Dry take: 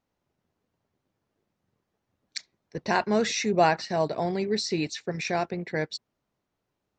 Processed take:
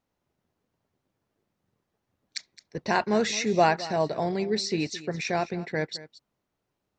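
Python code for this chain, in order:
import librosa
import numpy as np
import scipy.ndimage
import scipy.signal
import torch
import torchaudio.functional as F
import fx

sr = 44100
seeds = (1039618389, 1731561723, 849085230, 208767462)

y = x + 10.0 ** (-17.0 / 20.0) * np.pad(x, (int(216 * sr / 1000.0), 0))[:len(x)]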